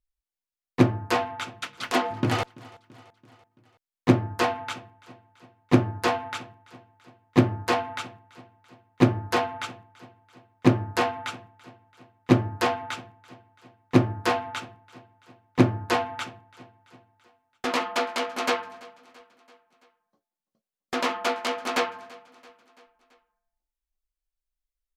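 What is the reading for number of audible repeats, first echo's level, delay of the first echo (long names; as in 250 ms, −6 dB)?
3, −23.0 dB, 335 ms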